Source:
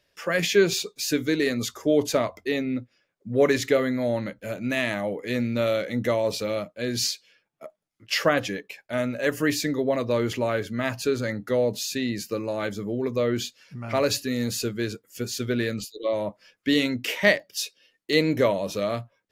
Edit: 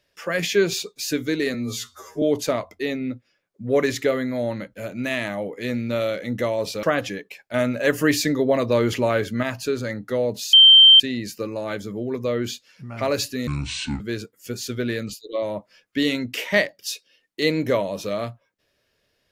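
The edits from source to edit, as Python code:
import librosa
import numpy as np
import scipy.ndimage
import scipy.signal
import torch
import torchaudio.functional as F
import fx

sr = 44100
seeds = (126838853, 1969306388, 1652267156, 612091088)

y = fx.edit(x, sr, fx.stretch_span(start_s=1.54, length_s=0.34, factor=2.0),
    fx.cut(start_s=6.49, length_s=1.73),
    fx.clip_gain(start_s=8.93, length_s=1.89, db=4.5),
    fx.insert_tone(at_s=11.92, length_s=0.47, hz=3130.0, db=-6.5),
    fx.speed_span(start_s=14.39, length_s=0.32, speed=0.6), tone=tone)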